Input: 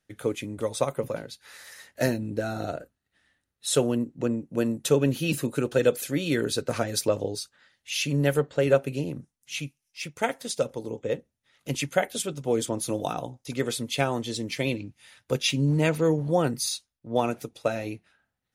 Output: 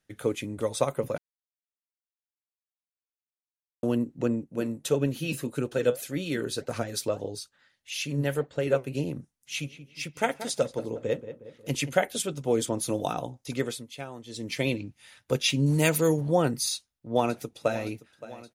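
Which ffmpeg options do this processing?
-filter_complex "[0:a]asettb=1/sr,asplit=3[a][b][c];[a]atrim=end=4.444[d];[b]atrim=start=4.44:end=8.95,asetpts=PTS-STARTPTS,afade=t=in:d=0.004:c=qsin,afade=t=out:st=4.506:d=0.004:c=qsin,flanger=delay=0.1:depth=8.1:regen=76:speed=1.7:shape=sinusoidal[e];[c]atrim=start=8.946[f];[d][e]acrossfade=d=0.004:c1=hsin:c2=qsin[g];[g][f]acrossfade=d=0.004:c1=qsin:c2=hsin,asplit=3[h][i][j];[h]afade=t=out:st=9.61:d=0.02[k];[i]asplit=2[l][m];[m]adelay=181,lowpass=f=2.1k:p=1,volume=-12dB,asplit=2[n][o];[o]adelay=181,lowpass=f=2.1k:p=1,volume=0.51,asplit=2[p][q];[q]adelay=181,lowpass=f=2.1k:p=1,volume=0.51,asplit=2[r][s];[s]adelay=181,lowpass=f=2.1k:p=1,volume=0.51,asplit=2[t][u];[u]adelay=181,lowpass=f=2.1k:p=1,volume=0.51[v];[l][n][p][r][t][v]amix=inputs=6:normalize=0,afade=t=in:st=9.61:d=0.02,afade=t=out:st=11.96:d=0.02[w];[j]afade=t=in:st=11.96:d=0.02[x];[k][w][x]amix=inputs=3:normalize=0,asettb=1/sr,asplit=3[y][z][aa];[y]atrim=end=15.664[ab];[z]atrim=start=15.66:end=16.21,asetpts=PTS-STARTPTS,afade=t=in:d=0.004:c=qsin,afade=t=out:st=0.546:d=0.004:c=qsin,aemphasis=mode=production:type=75fm[ac];[aa]atrim=start=16.206[ad];[ab][ac]acrossfade=d=0.004:c1=hsin:c2=qsin[ae];[ae][ad]acrossfade=d=0.004:c1=qsin:c2=hsin,asplit=2[af][ag];[ag]afade=t=in:st=16.72:d=0.01,afade=t=out:st=17.85:d=0.01,aecho=0:1:570|1140|1710|2280|2850|3420|3990|4560:0.141254|0.0988776|0.0692143|0.04845|0.033915|0.0237405|0.0166184|0.0116329[ah];[af][ah]amix=inputs=2:normalize=0,asplit=5[ai][aj][ak][al][am];[ai]atrim=end=1.18,asetpts=PTS-STARTPTS,afade=t=out:st=1.176:d=0.004:c=hsin[an];[aj]atrim=start=1.18:end=3.83,asetpts=PTS-STARTPTS,volume=0[ao];[ak]atrim=start=3.83:end=13.86,asetpts=PTS-STARTPTS,afade=t=in:d=0.004:c=hsin,afade=t=out:st=9.73:d=0.3:silence=0.211349[ap];[al]atrim=start=13.86:end=14.26,asetpts=PTS-STARTPTS,volume=-13.5dB[aq];[am]atrim=start=14.26,asetpts=PTS-STARTPTS,afade=t=in:d=0.3:silence=0.211349[ar];[an][ao][ap][aq][ar]concat=n=5:v=0:a=1"

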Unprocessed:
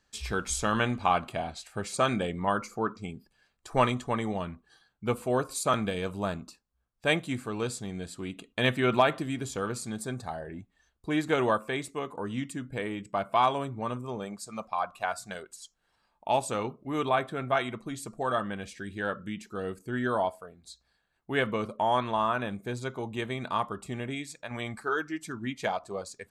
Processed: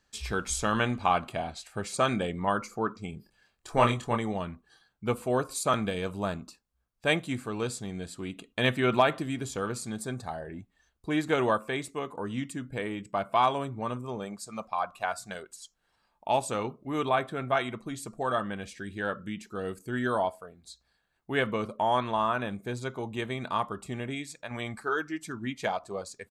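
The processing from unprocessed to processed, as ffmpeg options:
-filter_complex "[0:a]asplit=3[a][b][c];[a]afade=t=out:st=3.12:d=0.02[d];[b]asplit=2[e][f];[f]adelay=26,volume=-4dB[g];[e][g]amix=inputs=2:normalize=0,afade=t=in:st=3.12:d=0.02,afade=t=out:st=4.16:d=0.02[h];[c]afade=t=in:st=4.16:d=0.02[i];[d][h][i]amix=inputs=3:normalize=0,asettb=1/sr,asplit=3[j][k][l];[j]atrim=end=19.654[m];[k]atrim=start=19.65:end=20.19,asetpts=PTS-STARTPTS,afade=t=in:d=0.004:c=qsin,afade=t=out:st=0.536:d=0.004:c=qsin,highshelf=f=4.2k:g=5.5[n];[l]atrim=start=20.186[o];[m][n]acrossfade=d=0.004:c1=hsin:c2=qsin[p];[p][o]acrossfade=d=0.004:c1=qsin:c2=hsin"

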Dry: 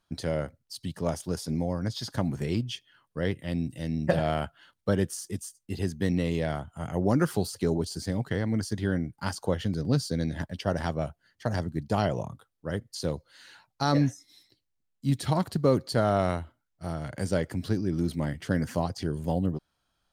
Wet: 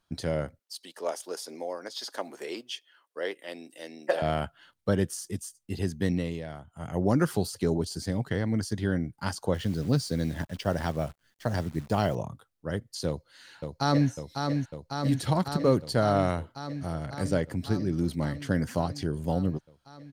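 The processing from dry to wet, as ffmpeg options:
-filter_complex "[0:a]asettb=1/sr,asplit=3[a][b][c];[a]atrim=end=0.594[d];[b]atrim=start=0.59:end=4.22,asetpts=PTS-STARTPTS,afade=t=in:d=0.004:c=qsin,afade=t=out:st=3.626:d=0.004:c=qsin,highpass=f=380:w=0.5412,highpass=f=380:w=1.3066[e];[c]atrim=start=4.216[f];[d][e]acrossfade=d=0.004:c1=hsin:c2=qsin[g];[g][f]acrossfade=d=0.004:c1=qsin:c2=hsin,asettb=1/sr,asplit=3[h][i][j];[h]atrim=end=9.544[k];[i]atrim=start=9.54:end=12.15,asetpts=PTS-STARTPTS,afade=t=in:d=0.004:c=qsin,afade=t=out:st=2.606:d=0.004:c=qsin,acrusher=bits=9:dc=4:mix=0:aa=0.000001[l];[j]atrim=start=12.146[m];[k][l]acrossfade=d=0.004:c1=hsin:c2=qsin[n];[n][m]acrossfade=d=0.004:c1=qsin:c2=hsin,asplit=2[o][p];[p]afade=t=in:st=13.07:d=0.01,afade=t=out:st=14.1:d=0.01,aecho=0:1:550|1100|1650|2200|2750|3300|3850|4400|4950|5500|6050|6600:0.562341|0.449873|0.359898|0.287919|0.230335|0.184268|0.147414|0.117932|0.0943452|0.0754762|0.0603809|0.0483048[q];[o][q]amix=inputs=2:normalize=0,asettb=1/sr,asplit=3[r][s][t];[r]atrim=end=17.064[u];[s]atrim=start=17.06:end=17.59,asetpts=PTS-STARTPTS,afade=t=in:d=0.004:c=qsin,afade=t=out:st=0.526:d=0.004:c=qsin,adynamicequalizer=threshold=0.00562:dfrequency=2100:dqfactor=0.7:tfrequency=2100:tqfactor=0.7:attack=5:release=100:ratio=0.375:range=1.5:mode=cutabove:tftype=highshelf[v];[t]atrim=start=17.586[w];[u][v]acrossfade=d=0.004:c1=hsin:c2=qsin[x];[x][w]acrossfade=d=0.004:c1=qsin:c2=hsin,asplit=3[y][z][aa];[y]atrim=end=6.43,asetpts=PTS-STARTPTS,afade=t=out:st=6.07:d=0.36:silence=0.334965[ab];[z]atrim=start=6.43:end=6.64,asetpts=PTS-STARTPTS,volume=-9.5dB[ac];[aa]atrim=start=6.64,asetpts=PTS-STARTPTS,afade=t=in:d=0.36:silence=0.334965[ad];[ab][ac][ad]concat=n=3:v=0:a=1"

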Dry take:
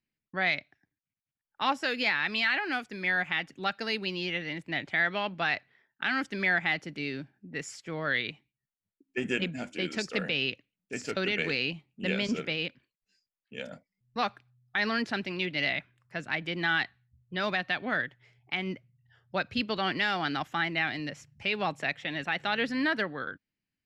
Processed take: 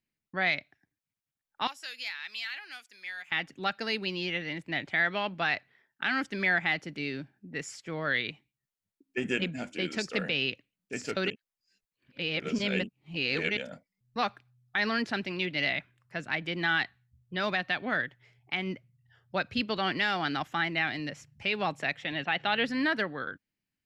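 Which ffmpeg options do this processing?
-filter_complex "[0:a]asettb=1/sr,asplit=3[a][b][c];[a]atrim=end=1.674[d];[b]atrim=start=1.67:end=3.32,asetpts=PTS-STARTPTS,afade=t=in:d=0.004:c=qsin,afade=t=out:st=1.646:d=0.004:c=qsin,aderivative[e];[c]atrim=start=3.316[f];[d][e]acrossfade=d=0.004:c1=hsin:c2=qsin[g];[g][f]acrossfade=d=0.004:c1=qsin:c2=hsin,asettb=1/sr,asplit=3[h][i][j];[h]atrim=end=22.124[k];[i]atrim=start=22.12:end=22.65,asetpts=PTS-STARTPTS,afade=t=in:d=0.004:c=qsin,afade=t=out:st=0.526:d=0.004:c=qsin,highpass=110,equalizer=f=120:t=q:w=4:g=6,equalizer=f=750:t=q:w=4:g=4,equalizer=f=3k:t=q:w=4:g=5,lowpass=f=4.8k:w=0.5412,lowpass=f=4.8k:w=1.3066[l];[j]atrim=start=22.646[m];[k][l]acrossfade=d=0.004:c1=hsin:c2=qsin[n];[n][m]acrossfade=d=0.004:c1=qsin:c2=hsin,asplit=3[o][p][q];[o]atrim=end=11.302[r];[p]atrim=start=11.298:end=13.572,asetpts=PTS-STARTPTS,areverse[s];[q]atrim=start=13.568[t];[r][s]acrossfade=d=0.004:c1=hsin:c2=hsin[u];[u][t]acrossfade=d=0.004:c1=hsin:c2=hsin"

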